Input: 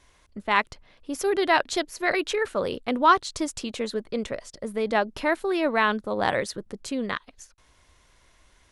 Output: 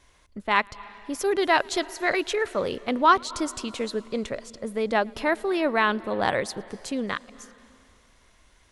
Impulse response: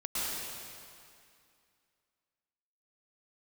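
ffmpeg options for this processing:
-filter_complex "[0:a]asplit=2[a][b];[1:a]atrim=start_sample=2205,adelay=111[c];[b][c]afir=irnorm=-1:irlink=0,volume=-26dB[d];[a][d]amix=inputs=2:normalize=0"

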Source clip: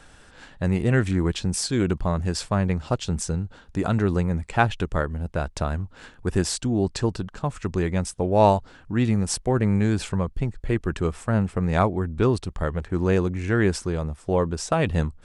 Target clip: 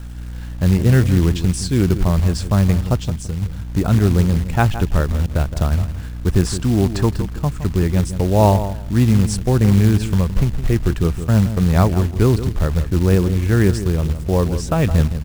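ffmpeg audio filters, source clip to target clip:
-filter_complex "[0:a]aeval=exprs='val(0)+0.01*(sin(2*PI*60*n/s)+sin(2*PI*2*60*n/s)/2+sin(2*PI*3*60*n/s)/3+sin(2*PI*4*60*n/s)/4+sin(2*PI*5*60*n/s)/5)':c=same,asettb=1/sr,asplit=3[a][b][c];[a]atrim=end=2.974[d];[b]atrim=start=2.97:end=3.42,asetpts=PTS-STARTPTS,afade=t=in:d=0.004:c=qsin,afade=t=out:st=0.446:d=0.004:c=qsin,acompressor=threshold=-29dB:ratio=4[e];[c]atrim=start=3.416[f];[d][e]acrossfade=d=0.004:c1=hsin:c2=qsin[g];[g][f]acrossfade=d=0.004:c1=qsin:c2=hsin,asettb=1/sr,asplit=3[h][i][j];[h]atrim=end=6.464[k];[i]atrim=start=6.46:end=7.09,asetpts=PTS-STARTPTS,afade=t=in:d=0.004:c=qsin,afade=t=out:st=0.626:d=0.004:c=qsin,equalizer=f=1.2k:w=1.5:g=9.5[l];[j]atrim=start=7.086[m];[k][l]acrossfade=d=0.004:c1=hsin:c2=qsin[n];[n][m]acrossfade=d=0.004:c1=qsin:c2=hsin,asettb=1/sr,asplit=3[o][p][q];[o]atrim=end=11.244[r];[p]atrim=start=11.24:end=12.16,asetpts=PTS-STARTPTS,afade=t=in:d=0.004:c=qsin,afade=t=out:st=0.916:d=0.004:c=qsin,agate=range=-8dB:threshold=-26dB:ratio=16:detection=peak[s];[q]atrim=start=12.156[t];[r][s]acrossfade=d=0.004:c1=hsin:c2=qsin[u];[u][t]acrossfade=d=0.004:c1=qsin:c2=hsin,lowshelf=f=230:g=11.5,asplit=2[v][w];[w]adelay=166,lowpass=f=1.3k:p=1,volume=-10.5dB,asplit=2[x][y];[y]adelay=166,lowpass=f=1.3k:p=1,volume=0.2,asplit=2[z][aa];[aa]adelay=166,lowpass=f=1.3k:p=1,volume=0.2[ab];[v][x][z][ab]amix=inputs=4:normalize=0,acrusher=bits=5:mode=log:mix=0:aa=0.000001"

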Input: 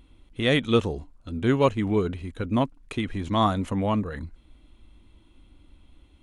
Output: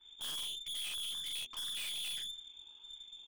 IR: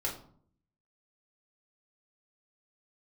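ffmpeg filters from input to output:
-af "afftfilt=real='re*pow(10,7/40*sin(2*PI*(0.55*log(max(b,1)*sr/1024/100)/log(2)-(-0.89)*(pts-256)/sr)))':imag='im*pow(10,7/40*sin(2*PI*(0.55*log(max(b,1)*sr/1024/100)/log(2)-(-0.89)*(pts-256)/sr)))':win_size=1024:overlap=0.75,aeval=exprs='val(0)*sin(2*PI*39*n/s)':c=same,atempo=1.9,lowpass=f=3.1k:t=q:w=0.5098,lowpass=f=3.1k:t=q:w=0.6013,lowpass=f=3.1k:t=q:w=0.9,lowpass=f=3.1k:t=q:w=2.563,afreqshift=-3600,equalizer=f=870:t=o:w=0.22:g=3.5,bandreject=f=60:t=h:w=6,bandreject=f=120:t=h:w=6,bandreject=f=180:t=h:w=6,bandreject=f=240:t=h:w=6,bandreject=f=300:t=h:w=6,bandreject=f=360:t=h:w=6,bandreject=f=420:t=h:w=6,aecho=1:1:42|63:0.562|0.141,alimiter=limit=-13dB:level=0:latency=1:release=379,aeval=exprs='(tanh(126*val(0)+0.4)-tanh(0.4))/126':c=same,adynamicequalizer=threshold=0.00126:dfrequency=2800:dqfactor=0.7:tfrequency=2800:tqfactor=0.7:attack=5:release=100:ratio=0.375:range=3.5:mode=boostabove:tftype=highshelf,volume=-2dB"

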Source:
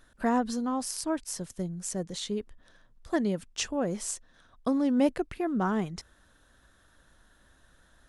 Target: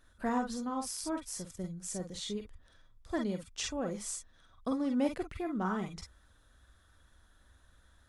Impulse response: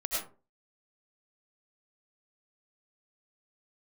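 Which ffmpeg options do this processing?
-filter_complex "[1:a]atrim=start_sample=2205,afade=t=out:st=0.14:d=0.01,atrim=end_sample=6615,asetrate=79380,aresample=44100[a];[0:a][a]afir=irnorm=-1:irlink=0"

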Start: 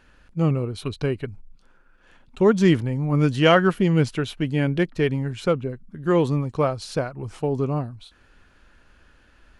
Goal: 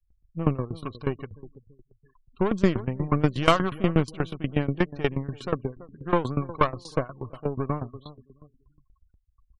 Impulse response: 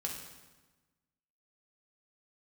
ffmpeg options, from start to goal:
-filter_complex "[0:a]equalizer=f=1.1k:t=o:w=0.22:g=14,aeval=exprs='0.891*(cos(1*acos(clip(val(0)/0.891,-1,1)))-cos(1*PI/2))+0.0282*(cos(4*acos(clip(val(0)/0.891,-1,1)))-cos(4*PI/2))+0.0708*(cos(8*acos(clip(val(0)/0.891,-1,1)))-cos(8*PI/2))':c=same,asplit=2[a][b];[b]adelay=333,lowpass=f=1.2k:p=1,volume=-16.5dB,asplit=2[c][d];[d]adelay=333,lowpass=f=1.2k:p=1,volume=0.38,asplit=2[e][f];[f]adelay=333,lowpass=f=1.2k:p=1,volume=0.38[g];[a][c][e][g]amix=inputs=4:normalize=0,afftfilt=real='re*gte(hypot(re,im),0.01)':imag='im*gte(hypot(re,im),0.01)':win_size=1024:overlap=0.75,aeval=exprs='val(0)*pow(10,-19*if(lt(mod(8.3*n/s,1),2*abs(8.3)/1000),1-mod(8.3*n/s,1)/(2*abs(8.3)/1000),(mod(8.3*n/s,1)-2*abs(8.3)/1000)/(1-2*abs(8.3)/1000))/20)':c=same"

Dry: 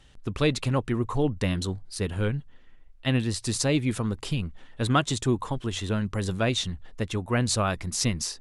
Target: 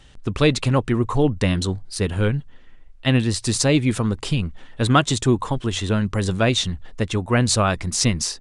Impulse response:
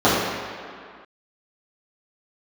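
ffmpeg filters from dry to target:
-af "aresample=22050,aresample=44100,volume=6.5dB"

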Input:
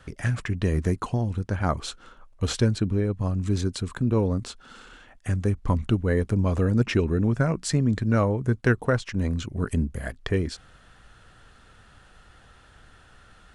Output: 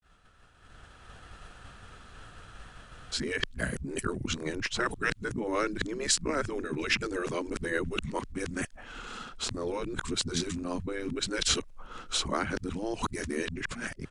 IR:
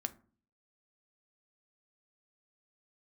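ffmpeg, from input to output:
-filter_complex "[0:a]areverse,acrossover=split=380|1400[a][b][c];[b]acompressor=threshold=-45dB:ratio=6[d];[a][d][c]amix=inputs=3:normalize=0,asetrate=42336,aresample=44100,afftfilt=real='re*lt(hypot(re,im),0.178)':imag='im*lt(hypot(re,im),0.178)':win_size=1024:overlap=0.75,dynaudnorm=f=120:g=13:m=5.5dB,agate=range=-33dB:threshold=-44dB:ratio=3:detection=peak"

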